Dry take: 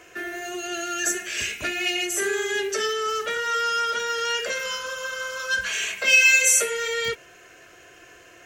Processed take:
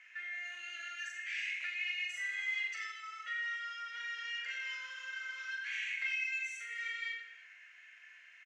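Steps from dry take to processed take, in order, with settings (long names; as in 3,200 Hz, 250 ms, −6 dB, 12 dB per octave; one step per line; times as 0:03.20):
0:02.09–0:03.33: comb filter 1.5 ms, depth 98%
downward compressor 6 to 1, threshold −29 dBFS, peak gain reduction 15.5 dB
four-pole ladder band-pass 2,200 Hz, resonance 70%
reverse bouncing-ball delay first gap 40 ms, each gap 1.25×, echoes 5
level −1.5 dB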